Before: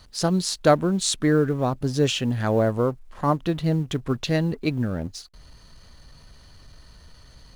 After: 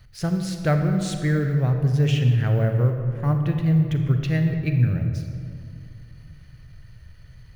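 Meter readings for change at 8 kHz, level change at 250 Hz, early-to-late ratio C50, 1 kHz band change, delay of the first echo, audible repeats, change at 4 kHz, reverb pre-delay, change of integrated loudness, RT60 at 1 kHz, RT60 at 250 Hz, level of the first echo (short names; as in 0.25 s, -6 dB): under -10 dB, -0.5 dB, 5.5 dB, -7.5 dB, none, none, -8.0 dB, 33 ms, +1.5 dB, 2.2 s, 2.8 s, none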